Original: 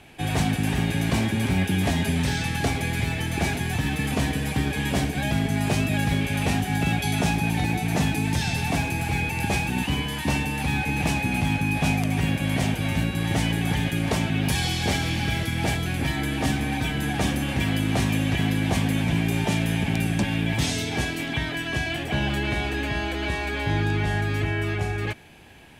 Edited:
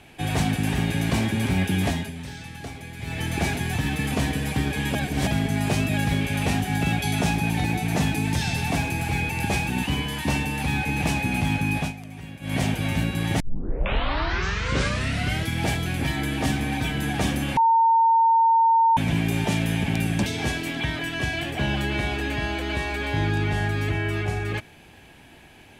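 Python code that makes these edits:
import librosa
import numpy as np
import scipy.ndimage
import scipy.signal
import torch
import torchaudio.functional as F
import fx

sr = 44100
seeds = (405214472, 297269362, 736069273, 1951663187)

y = fx.edit(x, sr, fx.fade_down_up(start_s=1.86, length_s=1.38, db=-12.0, fade_s=0.25),
    fx.reverse_span(start_s=4.95, length_s=0.32),
    fx.fade_down_up(start_s=11.77, length_s=0.8, db=-15.0, fade_s=0.16),
    fx.tape_start(start_s=13.4, length_s=2.07),
    fx.bleep(start_s=17.57, length_s=1.4, hz=910.0, db=-14.5),
    fx.cut(start_s=20.26, length_s=0.53), tone=tone)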